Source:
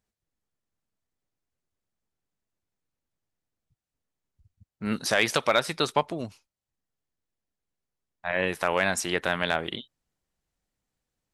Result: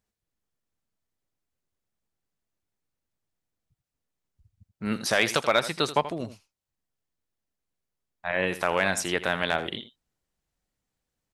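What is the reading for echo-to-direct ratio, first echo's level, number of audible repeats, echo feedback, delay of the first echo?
-13.5 dB, -13.5 dB, 1, no regular repeats, 82 ms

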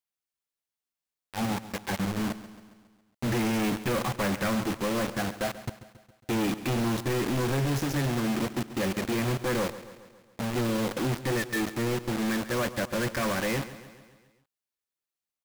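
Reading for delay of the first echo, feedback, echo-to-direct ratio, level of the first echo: 137 ms, 57%, -13.5 dB, -15.0 dB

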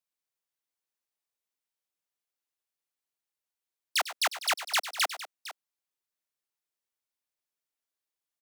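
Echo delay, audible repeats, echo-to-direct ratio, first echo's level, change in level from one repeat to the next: 99 ms, 2, -11.0 dB, -14.5 dB, no regular repeats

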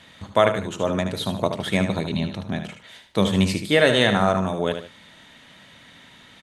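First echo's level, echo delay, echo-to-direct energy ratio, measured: -8.0 dB, 75 ms, -7.5 dB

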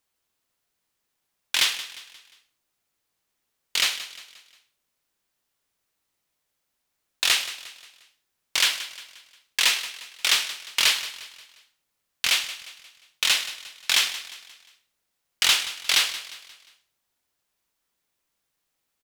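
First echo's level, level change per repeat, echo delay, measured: -14.5 dB, -7.0 dB, 177 ms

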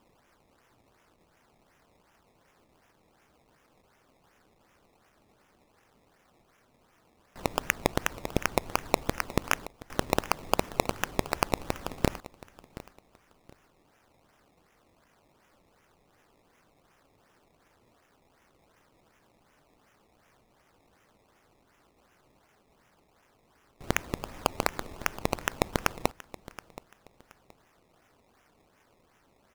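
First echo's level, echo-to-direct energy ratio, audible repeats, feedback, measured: -17.5 dB, -17.0 dB, 2, 26%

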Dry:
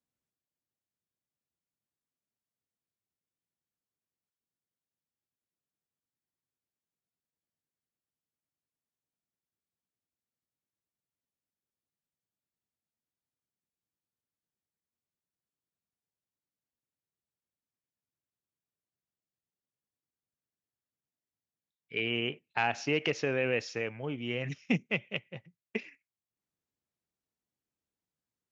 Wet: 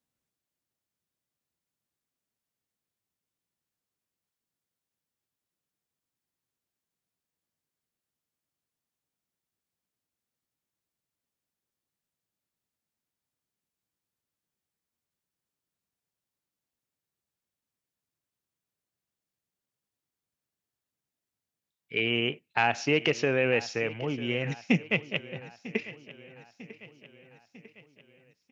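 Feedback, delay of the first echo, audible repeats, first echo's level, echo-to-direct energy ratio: 54%, 948 ms, 4, -17.5 dB, -16.0 dB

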